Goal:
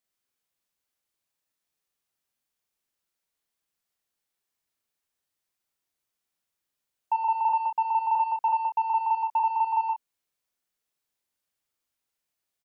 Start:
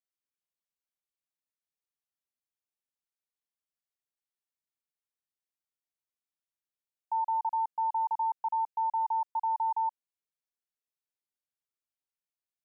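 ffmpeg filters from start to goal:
ffmpeg -i in.wav -af "acontrast=54,asoftclip=type=tanh:threshold=-17dB,aecho=1:1:23|44|70:0.224|0.631|0.266,volume=2dB" out.wav

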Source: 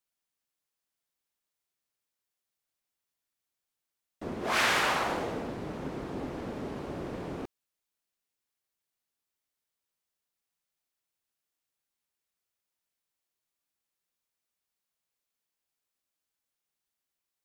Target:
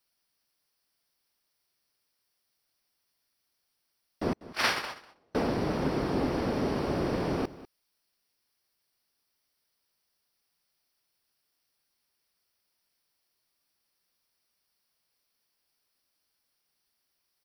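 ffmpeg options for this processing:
ffmpeg -i in.wav -filter_complex "[0:a]asettb=1/sr,asplit=3[link_01][link_02][link_03];[link_01]atrim=end=4.334[link_04];[link_02]atrim=start=4.33:end=5.35,asetpts=PTS-STARTPTS,afade=type=in:duration=0.004:curve=qsin,afade=type=out:start_time=1.016:duration=0.004:curve=qsin,agate=range=-44dB:threshold=-23dB:ratio=16:detection=peak[link_05];[link_03]atrim=start=5.346[link_06];[link_04][link_05]acrossfade=duration=0.004:curve1=hsin:curve2=qsin[link_07];[link_07][link_06]acrossfade=duration=0.004:curve1=qsin:curve2=hsin,superequalizer=14b=2:15b=0.316,aecho=1:1:196:0.133,volume=8dB" out.wav

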